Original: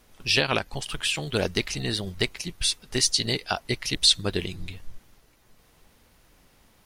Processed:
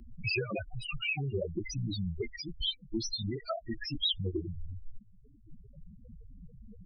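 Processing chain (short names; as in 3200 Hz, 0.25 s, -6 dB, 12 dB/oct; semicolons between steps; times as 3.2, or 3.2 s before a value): repeated pitch sweeps -2.5 st, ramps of 0.275 s; loudest bins only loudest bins 4; three-band squash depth 70%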